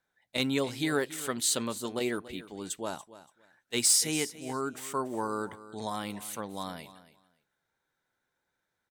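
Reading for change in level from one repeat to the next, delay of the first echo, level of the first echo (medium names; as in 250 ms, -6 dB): -14.5 dB, 285 ms, -16.0 dB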